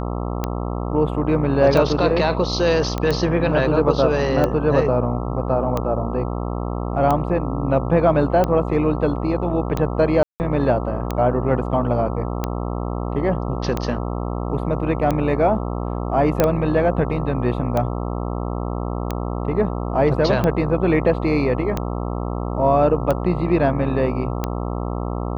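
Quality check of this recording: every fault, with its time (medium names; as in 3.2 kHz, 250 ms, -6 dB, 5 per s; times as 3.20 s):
buzz 60 Hz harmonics 22 -25 dBFS
tick 45 rpm -9 dBFS
2.98 s: pop -11 dBFS
10.23–10.40 s: dropout 169 ms
16.40 s: pop -3 dBFS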